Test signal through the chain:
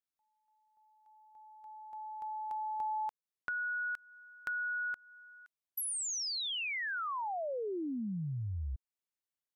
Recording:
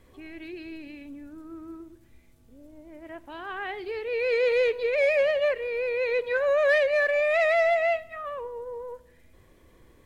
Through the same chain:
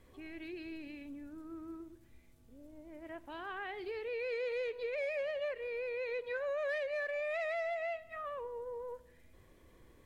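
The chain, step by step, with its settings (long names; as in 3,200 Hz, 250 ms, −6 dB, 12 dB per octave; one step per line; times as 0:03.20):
downward compressor 2.5 to 1, threshold −34 dBFS
level −5 dB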